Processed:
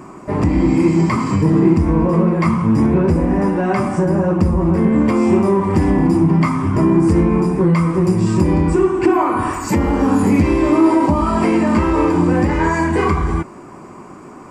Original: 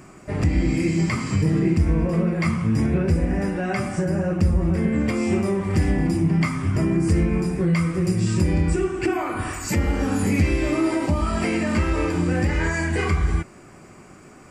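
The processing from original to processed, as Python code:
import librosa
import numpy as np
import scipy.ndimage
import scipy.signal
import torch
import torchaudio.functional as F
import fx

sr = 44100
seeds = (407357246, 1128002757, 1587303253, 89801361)

p1 = fx.peak_eq(x, sr, hz=300.0, db=10.0, octaves=2.1)
p2 = np.clip(10.0 ** (19.0 / 20.0) * p1, -1.0, 1.0) / 10.0 ** (19.0 / 20.0)
p3 = p1 + (p2 * librosa.db_to_amplitude(-11.0))
p4 = fx.peak_eq(p3, sr, hz=1000.0, db=14.0, octaves=0.57)
y = p4 * librosa.db_to_amplitude(-1.5)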